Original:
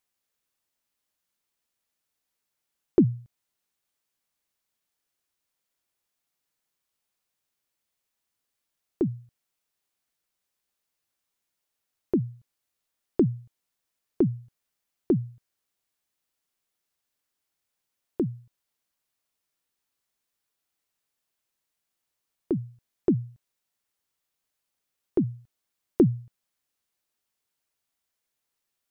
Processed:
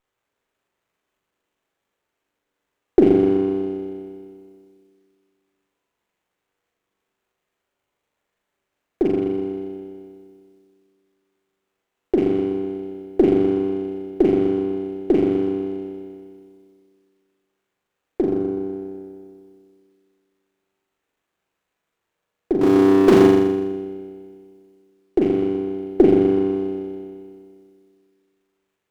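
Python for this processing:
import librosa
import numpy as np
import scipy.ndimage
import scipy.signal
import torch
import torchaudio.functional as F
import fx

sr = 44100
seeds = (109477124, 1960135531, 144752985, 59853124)

p1 = fx.rattle_buzz(x, sr, strikes_db=-25.0, level_db=-30.0)
p2 = scipy.signal.sosfilt(scipy.signal.butter(2, 250.0, 'highpass', fs=sr, output='sos'), p1)
p3 = fx.peak_eq(p2, sr, hz=400.0, db=8.0, octaves=0.97)
p4 = fx.rev_spring(p3, sr, rt60_s=2.2, pass_ms=(31,), chirp_ms=60, drr_db=5.0)
p5 = np.clip(10.0 ** (31.0 / 20.0) * p4, -1.0, 1.0) / 10.0 ** (31.0 / 20.0)
p6 = p4 + (p5 * librosa.db_to_amplitude(-8.0))
p7 = fx.power_curve(p6, sr, exponent=0.5, at=(22.61, 23.27))
p8 = p7 + fx.room_flutter(p7, sr, wall_m=7.1, rt60_s=1.0, dry=0)
y = fx.running_max(p8, sr, window=9)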